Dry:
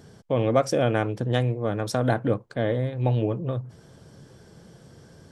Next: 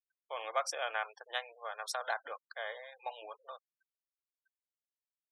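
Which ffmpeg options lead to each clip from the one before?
-af "highpass=f=820:w=0.5412,highpass=f=820:w=1.3066,afftfilt=real='re*gte(hypot(re,im),0.00794)':imag='im*gte(hypot(re,im),0.00794)':win_size=1024:overlap=0.75,volume=-4.5dB"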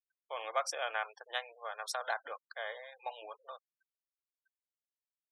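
-af anull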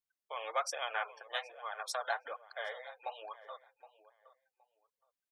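-filter_complex "[0:a]asplit=2[a][b];[b]adelay=768,lowpass=f=2k:p=1,volume=-16dB,asplit=2[c][d];[d]adelay=768,lowpass=f=2k:p=1,volume=0.24[e];[a][c][e]amix=inputs=3:normalize=0,flanger=delay=0.9:depth=6.4:regen=25:speed=1.2:shape=sinusoidal,volume=3.5dB"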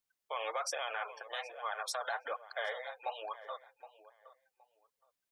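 -af "alimiter=level_in=7.5dB:limit=-24dB:level=0:latency=1:release=28,volume=-7.5dB,volume=4.5dB"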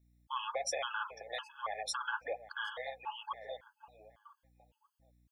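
-af "aeval=exprs='val(0)+0.000316*(sin(2*PI*60*n/s)+sin(2*PI*2*60*n/s)/2+sin(2*PI*3*60*n/s)/3+sin(2*PI*4*60*n/s)/4+sin(2*PI*5*60*n/s)/5)':c=same,afftfilt=real='re*gt(sin(2*PI*1.8*pts/sr)*(1-2*mod(floor(b*sr/1024/860),2)),0)':imag='im*gt(sin(2*PI*1.8*pts/sr)*(1-2*mod(floor(b*sr/1024/860),2)),0)':win_size=1024:overlap=0.75,volume=3dB"

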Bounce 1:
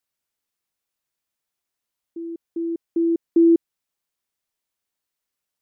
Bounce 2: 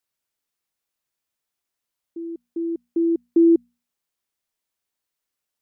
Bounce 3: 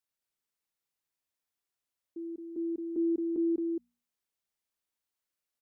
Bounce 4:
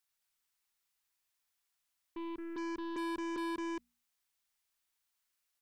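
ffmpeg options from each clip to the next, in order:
-af "bandreject=f=60:t=h:w=6,bandreject=f=120:t=h:w=6,bandreject=f=180:t=h:w=6,bandreject=f=240:t=h:w=6"
-af "alimiter=limit=-17dB:level=0:latency=1:release=274,aecho=1:1:220:0.631,volume=-7.5dB"
-af "asoftclip=type=tanh:threshold=-38dB,aeval=exprs='0.0126*(cos(1*acos(clip(val(0)/0.0126,-1,1)))-cos(1*PI/2))+0.000398*(cos(4*acos(clip(val(0)/0.0126,-1,1)))-cos(4*PI/2))+0.000398*(cos(5*acos(clip(val(0)/0.0126,-1,1)))-cos(5*PI/2))+0.000891*(cos(7*acos(clip(val(0)/0.0126,-1,1)))-cos(7*PI/2))+0.000316*(cos(8*acos(clip(val(0)/0.0126,-1,1)))-cos(8*PI/2))':c=same,equalizer=f=125:t=o:w=1:g=-10,equalizer=f=250:t=o:w=1:g=-7,equalizer=f=500:t=o:w=1:g=-9,volume=9.5dB"

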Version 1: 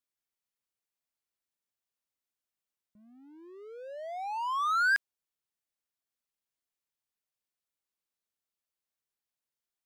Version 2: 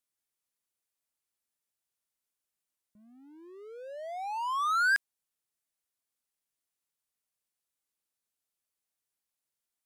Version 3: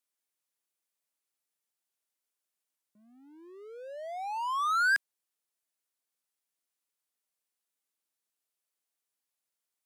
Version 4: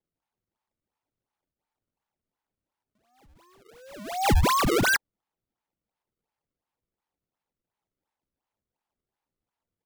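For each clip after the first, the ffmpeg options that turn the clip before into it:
-af "equalizer=f=10k:t=o:w=1.1:g=6"
-af "highpass=230"
-af "aresample=16000,aresample=44100,highpass=f=860:t=q:w=6.9,acrusher=samples=30:mix=1:aa=0.000001:lfo=1:lforange=48:lforate=2.8"

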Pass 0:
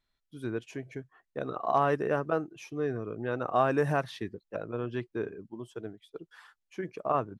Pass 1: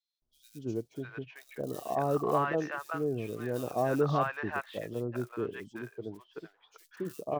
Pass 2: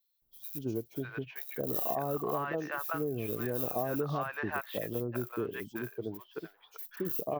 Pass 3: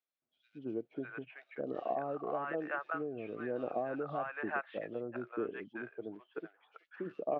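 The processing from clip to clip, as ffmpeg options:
-filter_complex "[0:a]lowpass=f=6.2k:w=0.5412,lowpass=f=6.2k:w=1.3066,acrusher=bits=6:mode=log:mix=0:aa=0.000001,acrossover=split=810|3600[a][b][c];[a]adelay=220[d];[b]adelay=600[e];[d][e][c]amix=inputs=3:normalize=0"
-af "acompressor=threshold=-33dB:ratio=6,aexciter=amount=6.2:drive=4.8:freq=11k,volume=3dB"
-af "aphaser=in_gain=1:out_gain=1:delay=1.5:decay=0.23:speed=1.1:type=sinusoidal,highpass=300,equalizer=f=410:t=q:w=4:g=-4,equalizer=f=990:t=q:w=4:g=-8,equalizer=f=1.9k:t=q:w=4:g=-4,lowpass=f=2.4k:w=0.5412,lowpass=f=2.4k:w=1.3066"

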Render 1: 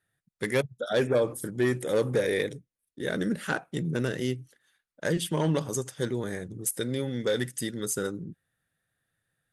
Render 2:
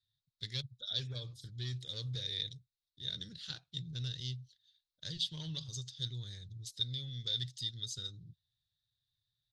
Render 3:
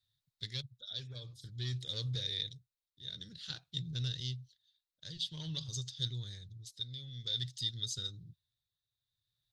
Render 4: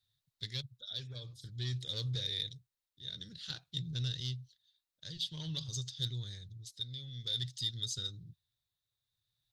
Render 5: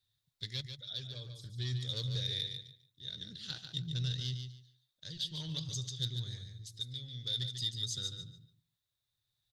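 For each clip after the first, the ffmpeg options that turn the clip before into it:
-af "firequalizer=gain_entry='entry(120,0);entry(190,-20);entry(270,-25);entry(610,-27);entry(2400,-14);entry(3800,12);entry(9600,-25)':delay=0.05:min_phase=1,volume=-4dB"
-af "tremolo=f=0.51:d=0.62,volume=3dB"
-af "asoftclip=type=tanh:threshold=-24dB,volume=1dB"
-af "aecho=1:1:144|288|432:0.422|0.0886|0.0186"

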